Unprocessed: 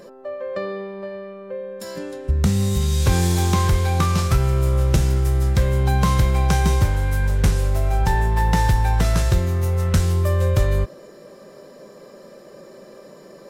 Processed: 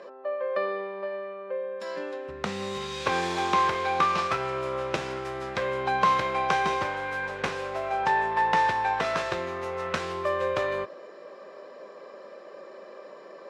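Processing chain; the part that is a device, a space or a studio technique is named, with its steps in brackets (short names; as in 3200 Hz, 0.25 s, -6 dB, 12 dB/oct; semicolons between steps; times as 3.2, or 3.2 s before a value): tin-can telephone (BPF 500–3000 Hz; small resonant body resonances 1100/2500 Hz, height 7 dB); gain +1.5 dB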